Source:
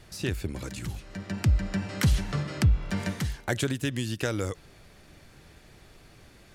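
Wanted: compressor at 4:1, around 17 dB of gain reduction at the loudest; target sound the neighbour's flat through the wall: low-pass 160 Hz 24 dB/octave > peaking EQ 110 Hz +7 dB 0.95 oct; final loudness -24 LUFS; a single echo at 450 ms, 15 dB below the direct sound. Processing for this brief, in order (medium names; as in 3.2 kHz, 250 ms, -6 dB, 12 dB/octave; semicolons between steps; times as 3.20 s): compression 4:1, threshold -39 dBFS; low-pass 160 Hz 24 dB/octave; peaking EQ 110 Hz +7 dB 0.95 oct; delay 450 ms -15 dB; trim +17 dB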